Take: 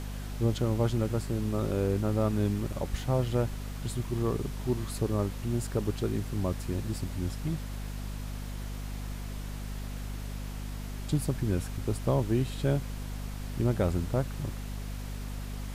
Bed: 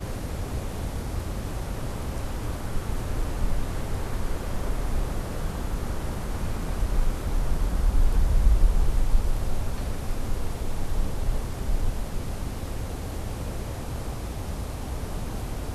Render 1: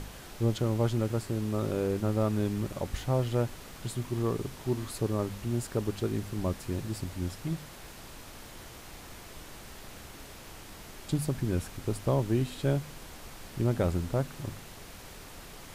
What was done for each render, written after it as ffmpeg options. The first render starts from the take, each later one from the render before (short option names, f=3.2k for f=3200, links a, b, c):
-af "bandreject=f=50:t=h:w=4,bandreject=f=100:t=h:w=4,bandreject=f=150:t=h:w=4,bandreject=f=200:t=h:w=4,bandreject=f=250:t=h:w=4"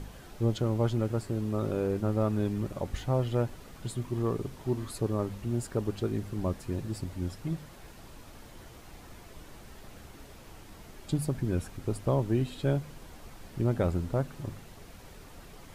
-af "afftdn=nr=7:nf=-47"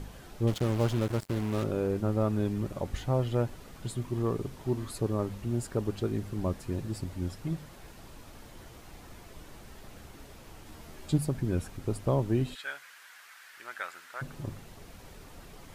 -filter_complex "[0:a]asettb=1/sr,asplit=3[a][b][c];[a]atrim=end=0.474[d];[b]atrim=start=0.47:end=1.64,asetpts=PTS-STARTPTS,afade=t=in:d=0.004:c=qsin,afade=t=out:st=1.166:d=0.004:c=qsin,acrusher=bits=5:mix=0:aa=0.5[e];[c]atrim=start=1.636[f];[d][e]acrossfade=d=0.004:c1=hsin:c2=qsin[g];[g][f]acrossfade=d=0.004:c1=qsin:c2=hsin,asettb=1/sr,asplit=3[h][i][j];[h]atrim=end=10.654[k];[i]atrim=start=10.65:end=11.18,asetpts=PTS-STARTPTS,afade=t=in:d=0.004:c=qsin,afade=t=out:st=0.526:d=0.004:c=qsin,asplit=2[l][m];[m]adelay=13,volume=-4.5dB[n];[l][n]amix=inputs=2:normalize=0,atrim=end_sample=23373[o];[j]atrim=start=11.176[p];[k][o]acrossfade=d=0.004:c1=hsin:c2=qsin[q];[q][p]acrossfade=d=0.004:c1=qsin:c2=hsin,asplit=3[r][s][t];[r]afade=t=out:st=12.54:d=0.02[u];[s]highpass=f=1.6k:t=q:w=2.9,afade=t=in:st=12.54:d=0.02,afade=t=out:st=14.21:d=0.02[v];[t]afade=t=in:st=14.21:d=0.02[w];[u][v][w]amix=inputs=3:normalize=0"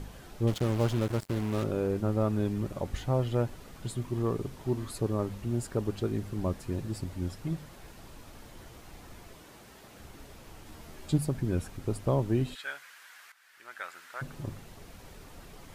-filter_complex "[0:a]asettb=1/sr,asplit=3[a][b][c];[a]atrim=end=9.354[d];[b]atrim=start=9.35:end=9.99,asetpts=PTS-STARTPTS,afade=t=in:d=0.004:c=qsin,afade=t=out:st=0.636:d=0.004:c=qsin,highpass=f=180:p=1[e];[c]atrim=start=9.986[f];[d][e]acrossfade=d=0.004:c1=hsin:c2=qsin[g];[g][f]acrossfade=d=0.004:c1=qsin:c2=hsin,asplit=2[h][i];[h]atrim=end=13.32,asetpts=PTS-STARTPTS,afade=t=out:st=13.316:d=0.004:c=hsin:silence=0.211349[j];[i]atrim=start=13.32,asetpts=PTS-STARTPTS,afade=t=in:d=0.74:silence=0.211349[k];[j][k]concat=n=2:v=0:a=1"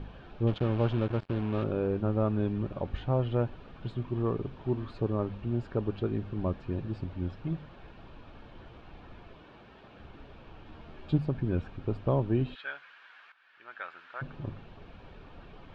-af "lowpass=f=3.3k:w=0.5412,lowpass=f=3.3k:w=1.3066,bandreject=f=2k:w=7.4"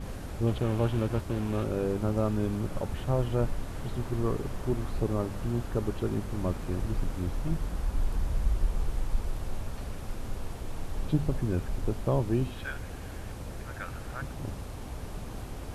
-filter_complex "[1:a]volume=-7.5dB[a];[0:a][a]amix=inputs=2:normalize=0"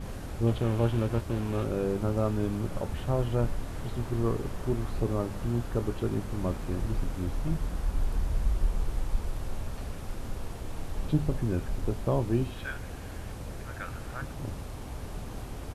-filter_complex "[0:a]asplit=2[a][b];[b]adelay=26,volume=-13dB[c];[a][c]amix=inputs=2:normalize=0"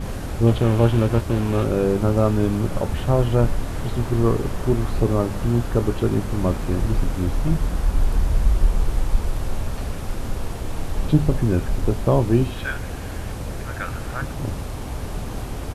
-af "volume=9.5dB"